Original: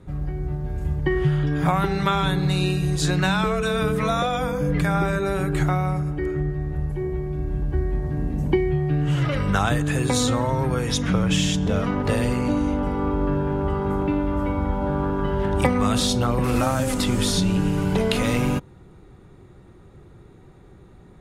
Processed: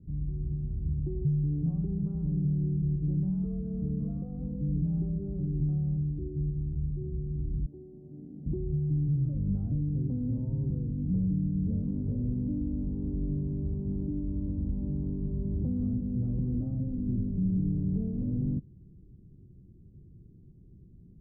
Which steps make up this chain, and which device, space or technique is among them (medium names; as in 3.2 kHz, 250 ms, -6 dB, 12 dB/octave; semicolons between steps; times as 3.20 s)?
7.66–8.46 s: high-pass 370 Hz 12 dB/octave; overdriven synthesiser ladder filter (saturation -16.5 dBFS, distortion -16 dB; four-pole ladder low-pass 300 Hz, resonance 20%)